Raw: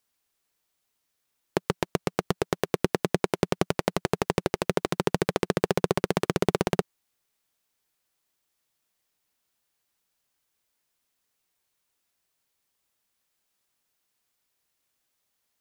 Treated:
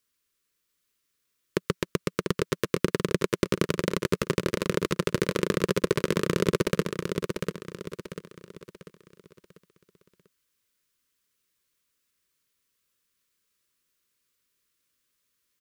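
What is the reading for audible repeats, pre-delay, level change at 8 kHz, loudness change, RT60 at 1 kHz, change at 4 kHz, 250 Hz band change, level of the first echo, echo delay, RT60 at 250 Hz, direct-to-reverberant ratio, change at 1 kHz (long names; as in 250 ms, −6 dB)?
4, no reverb audible, +1.0 dB, −0.5 dB, no reverb audible, +1.0 dB, +1.0 dB, −5.5 dB, 693 ms, no reverb audible, no reverb audible, −4.5 dB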